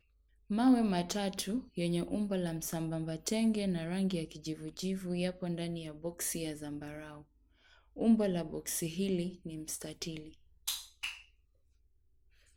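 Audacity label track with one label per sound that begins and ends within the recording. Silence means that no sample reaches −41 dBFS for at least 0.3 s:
0.500000	7.180000	sound
7.970000	10.290000	sound
10.680000	11.150000	sound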